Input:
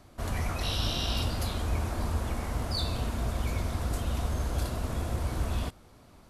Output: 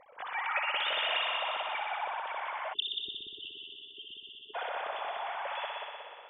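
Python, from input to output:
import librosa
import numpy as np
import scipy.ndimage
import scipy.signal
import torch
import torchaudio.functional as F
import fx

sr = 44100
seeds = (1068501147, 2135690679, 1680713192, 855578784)

y = fx.sine_speech(x, sr)
y = fx.echo_heads(y, sr, ms=61, heads='all three', feedback_pct=67, wet_db=-7.5)
y = fx.spec_erase(y, sr, start_s=2.73, length_s=1.82, low_hz=450.0, high_hz=2700.0)
y = F.gain(torch.from_numpy(y), -8.5).numpy()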